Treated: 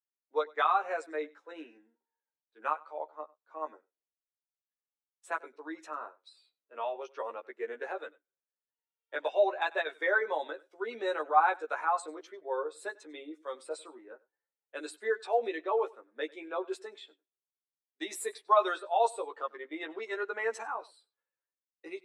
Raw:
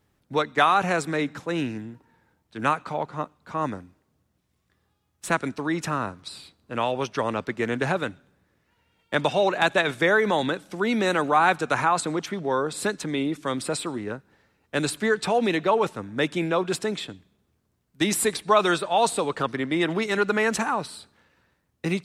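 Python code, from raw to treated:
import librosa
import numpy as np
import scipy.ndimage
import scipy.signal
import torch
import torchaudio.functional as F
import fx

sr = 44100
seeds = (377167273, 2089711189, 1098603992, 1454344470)

y = scipy.signal.sosfilt(scipy.signal.butter(4, 380.0, 'highpass', fs=sr, output='sos'), x)
y = fx.doubler(y, sr, ms=13.0, db=-3)
y = y + 10.0 ** (-16.0 / 20.0) * np.pad(y, (int(97 * sr / 1000.0), 0))[:len(y)]
y = fx.spectral_expand(y, sr, expansion=1.5)
y = y * 10.0 ** (-6.5 / 20.0)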